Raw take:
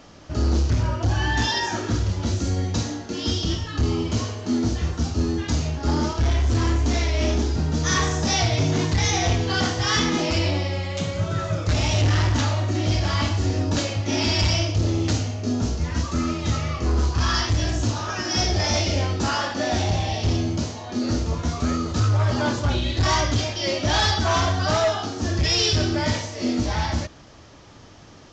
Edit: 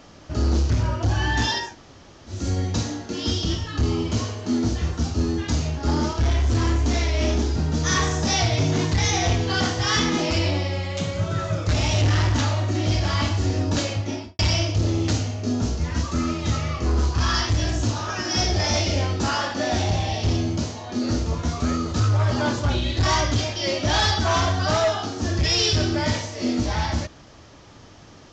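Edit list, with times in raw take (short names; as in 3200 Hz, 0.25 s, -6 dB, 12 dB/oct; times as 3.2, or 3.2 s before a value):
1.64–2.37 room tone, crossfade 0.24 s
13.93–14.39 studio fade out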